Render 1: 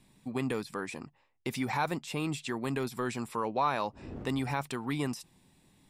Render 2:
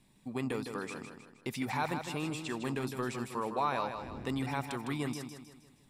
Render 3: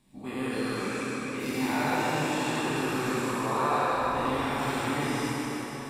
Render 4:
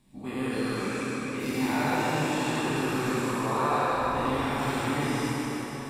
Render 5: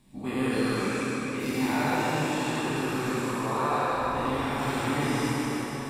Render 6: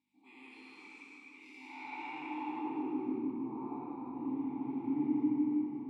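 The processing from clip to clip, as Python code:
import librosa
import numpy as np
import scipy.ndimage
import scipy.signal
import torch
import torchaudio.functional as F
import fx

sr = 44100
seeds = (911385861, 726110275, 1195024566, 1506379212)

y1 = fx.echo_feedback(x, sr, ms=157, feedback_pct=45, wet_db=-7.5)
y1 = y1 * 10.0 ** (-3.0 / 20.0)
y2 = fx.spec_dilate(y1, sr, span_ms=240)
y2 = fx.rev_plate(y2, sr, seeds[0], rt60_s=4.8, hf_ratio=0.8, predelay_ms=0, drr_db=-7.0)
y2 = y2 * 10.0 ** (-7.0 / 20.0)
y3 = fx.low_shelf(y2, sr, hz=210.0, db=4.0)
y4 = fx.rider(y3, sr, range_db=4, speed_s=2.0)
y5 = fx.add_hum(y4, sr, base_hz=50, snr_db=15)
y5 = fx.vowel_filter(y5, sr, vowel='u')
y5 = fx.filter_sweep_bandpass(y5, sr, from_hz=6200.0, to_hz=200.0, start_s=1.65, end_s=3.38, q=0.74)
y5 = y5 * 10.0 ** (3.5 / 20.0)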